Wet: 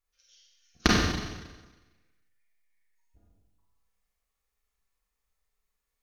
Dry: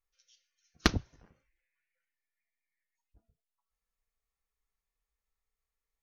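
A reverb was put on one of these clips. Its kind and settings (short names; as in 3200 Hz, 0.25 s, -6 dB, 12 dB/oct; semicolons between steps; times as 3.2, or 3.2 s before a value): Schroeder reverb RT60 1.2 s, combs from 31 ms, DRR -4 dB; gain +1.5 dB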